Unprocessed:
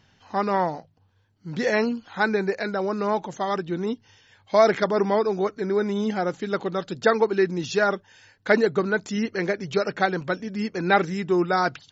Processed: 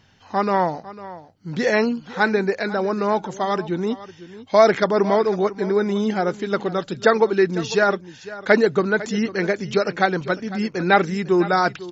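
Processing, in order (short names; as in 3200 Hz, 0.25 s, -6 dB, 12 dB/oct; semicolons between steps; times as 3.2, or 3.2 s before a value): echo 0.501 s -16.5 dB; gain +3.5 dB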